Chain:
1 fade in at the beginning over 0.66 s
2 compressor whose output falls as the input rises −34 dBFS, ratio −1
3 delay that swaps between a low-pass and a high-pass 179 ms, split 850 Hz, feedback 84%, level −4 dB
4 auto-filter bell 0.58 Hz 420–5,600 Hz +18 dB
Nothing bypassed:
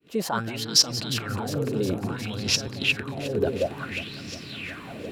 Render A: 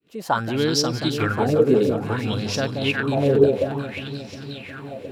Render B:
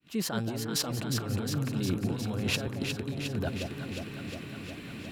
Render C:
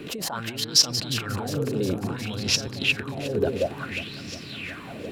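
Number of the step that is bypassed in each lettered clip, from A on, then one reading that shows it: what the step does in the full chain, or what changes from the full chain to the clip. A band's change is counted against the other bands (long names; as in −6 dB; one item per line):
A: 2, change in crest factor −5.0 dB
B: 4, 125 Hz band +8.0 dB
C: 1, 1 kHz band −2.0 dB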